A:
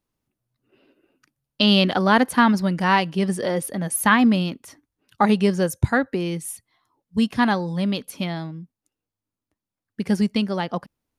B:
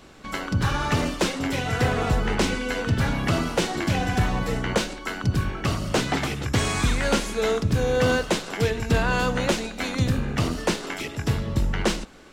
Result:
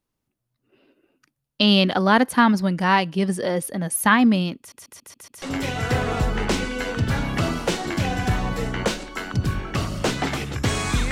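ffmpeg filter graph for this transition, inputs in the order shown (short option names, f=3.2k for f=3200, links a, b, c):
-filter_complex "[0:a]apad=whole_dur=11.11,atrim=end=11.11,asplit=6[a][b][c][d][e][f];[a]atrim=end=4.722[g];[b]atrim=start=4.578:end=4.722[h];[c]atrim=start=4.578:end=4.722[i];[d]atrim=start=4.578:end=4.722[j];[e]atrim=start=4.578:end=4.722[k];[f]atrim=start=4.578:end=4.722[l];[1:a]atrim=start=1.318:end=7.01[m];[g][h]acrossfade=d=0.004:c1=hsin:c2=hsin[n];[n][i]acrossfade=d=0.004:c1=hsin:c2=hsin[o];[o][j]acrossfade=d=0.004:c1=hsin:c2=hsin[p];[p][k]acrossfade=d=0.004:c1=hsin:c2=hsin[q];[q][l]acrossfade=d=0.004:c1=hsin:c2=hsin[r];[r][m]acrossfade=d=0.004:c1=hsin:c2=hsin"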